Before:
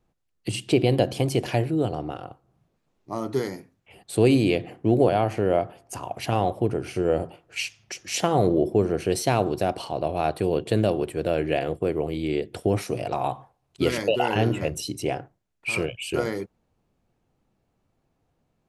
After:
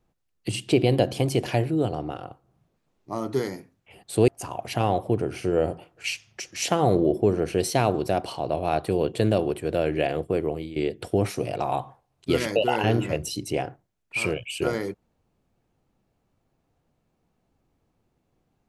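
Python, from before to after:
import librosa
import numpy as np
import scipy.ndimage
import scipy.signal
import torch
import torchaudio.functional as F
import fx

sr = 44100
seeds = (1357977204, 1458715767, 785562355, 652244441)

y = fx.edit(x, sr, fx.cut(start_s=4.28, length_s=1.52),
    fx.fade_out_to(start_s=11.89, length_s=0.39, curve='qsin', floor_db=-15.0), tone=tone)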